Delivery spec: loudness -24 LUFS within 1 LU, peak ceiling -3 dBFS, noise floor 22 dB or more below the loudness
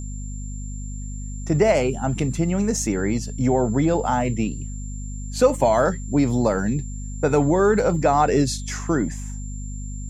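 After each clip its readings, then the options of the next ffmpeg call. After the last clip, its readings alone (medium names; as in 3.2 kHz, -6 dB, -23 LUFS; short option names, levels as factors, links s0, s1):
hum 50 Hz; highest harmonic 250 Hz; hum level -28 dBFS; steady tone 7.3 kHz; tone level -41 dBFS; loudness -21.0 LUFS; peak level -5.5 dBFS; loudness target -24.0 LUFS
-> -af "bandreject=f=50:t=h:w=6,bandreject=f=100:t=h:w=6,bandreject=f=150:t=h:w=6,bandreject=f=200:t=h:w=6,bandreject=f=250:t=h:w=6"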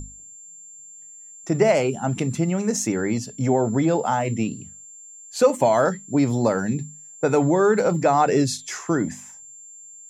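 hum not found; steady tone 7.3 kHz; tone level -41 dBFS
-> -af "bandreject=f=7300:w=30"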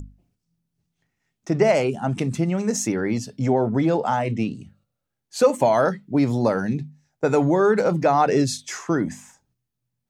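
steady tone not found; loudness -21.5 LUFS; peak level -5.5 dBFS; loudness target -24.0 LUFS
-> -af "volume=0.75"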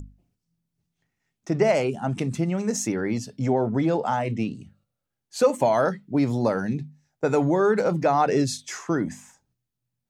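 loudness -24.0 LUFS; peak level -8.0 dBFS; noise floor -83 dBFS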